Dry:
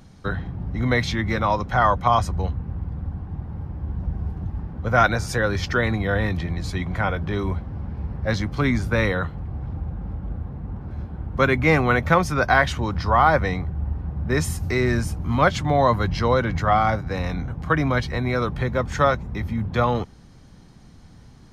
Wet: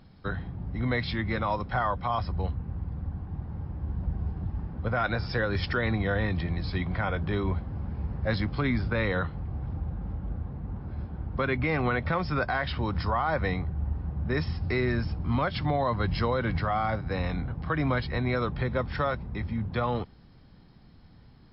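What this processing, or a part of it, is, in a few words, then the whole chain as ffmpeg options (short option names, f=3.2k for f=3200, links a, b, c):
low-bitrate web radio: -af "dynaudnorm=f=350:g=17:m=5.5dB,alimiter=limit=-11.5dB:level=0:latency=1:release=104,volume=-5.5dB" -ar 12000 -c:a libmp3lame -b:a 40k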